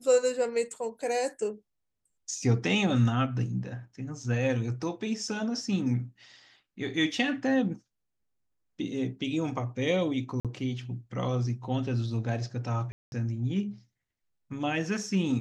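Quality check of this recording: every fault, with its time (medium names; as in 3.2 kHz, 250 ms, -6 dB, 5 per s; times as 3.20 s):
10.40–10.45 s: dropout 47 ms
12.92–13.12 s: dropout 201 ms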